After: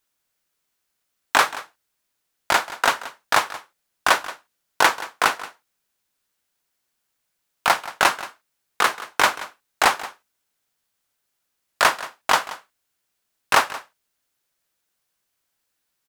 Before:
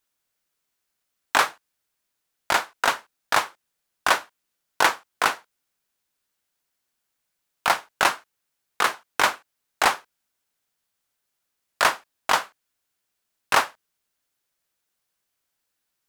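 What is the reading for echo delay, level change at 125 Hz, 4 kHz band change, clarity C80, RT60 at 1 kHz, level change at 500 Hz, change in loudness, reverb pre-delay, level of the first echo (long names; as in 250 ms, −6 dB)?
178 ms, +2.5 dB, +2.5 dB, no reverb audible, no reverb audible, +2.5 dB, +2.5 dB, no reverb audible, −16.5 dB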